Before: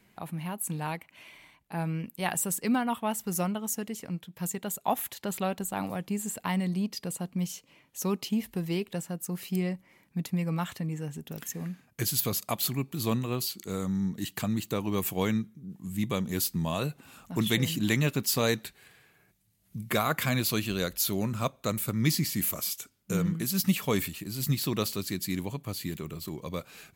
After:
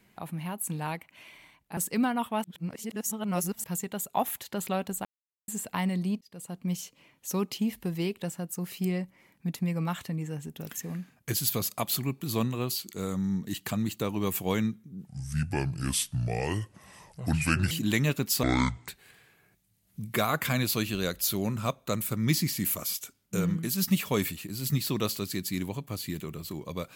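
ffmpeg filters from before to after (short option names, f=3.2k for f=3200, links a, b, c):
-filter_complex "[0:a]asplit=11[a][b][c][d][e][f][g][h][i][j][k];[a]atrim=end=1.772[l];[b]atrim=start=2.478:end=3.152[m];[c]atrim=start=3.148:end=4.352,asetpts=PTS-STARTPTS,areverse[n];[d]atrim=start=4.348:end=5.76,asetpts=PTS-STARTPTS,afade=t=out:st=1.408:d=0.004:c=hsin[o];[e]atrim=start=5.76:end=6.19,asetpts=PTS-STARTPTS,volume=0[p];[f]atrim=start=6.19:end=6.92,asetpts=PTS-STARTPTS,afade=t=in:d=0.004:c=hsin,afade=t=out:st=0.726:d=0.004:c=hsin[q];[g]atrim=start=6.92:end=15.784,asetpts=PTS-STARTPTS,afade=t=in:d=0.49[r];[h]atrim=start=15.78:end=17.68,asetpts=PTS-STARTPTS,asetrate=31752,aresample=44100[s];[i]atrim=start=17.676:end=18.404[t];[j]atrim=start=18.4:end=18.65,asetpts=PTS-STARTPTS,asetrate=24255,aresample=44100,atrim=end_sample=20045,asetpts=PTS-STARTPTS[u];[k]atrim=start=18.646[v];[l][m]acrossfade=d=0.004:c1=hsin:c2=hsin[w];[w][n]acrossfade=d=0.004:c1=hsin:c2=hsin[x];[o][p][q][r]concat=n=4:v=0:a=1[y];[x][y]acrossfade=d=0.004:c1=hsin:c2=hsin[z];[z][s]acrossfade=d=0.004:c1=hsin:c2=hsin[aa];[aa][t]acrossfade=d=0.004:c1=hsin:c2=hsin[ab];[ab][u]acrossfade=d=0.004:c1=hsin:c2=hsin[ac];[ac][v]acrossfade=d=0.004:c1=hsin:c2=hsin"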